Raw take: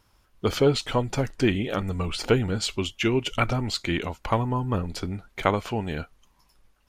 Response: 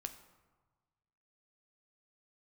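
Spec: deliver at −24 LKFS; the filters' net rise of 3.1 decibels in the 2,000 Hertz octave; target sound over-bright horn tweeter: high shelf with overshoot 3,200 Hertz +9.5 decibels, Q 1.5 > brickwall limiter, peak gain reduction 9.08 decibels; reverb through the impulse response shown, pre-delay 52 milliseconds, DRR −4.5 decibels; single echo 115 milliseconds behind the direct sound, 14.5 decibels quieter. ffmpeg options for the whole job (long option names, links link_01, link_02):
-filter_complex "[0:a]equalizer=frequency=2000:width_type=o:gain=6,aecho=1:1:115:0.188,asplit=2[link_01][link_02];[1:a]atrim=start_sample=2205,adelay=52[link_03];[link_02][link_03]afir=irnorm=-1:irlink=0,volume=7.5dB[link_04];[link_01][link_04]amix=inputs=2:normalize=0,highshelf=frequency=3200:width_type=q:width=1.5:gain=9.5,volume=-5dB,alimiter=limit=-12.5dB:level=0:latency=1"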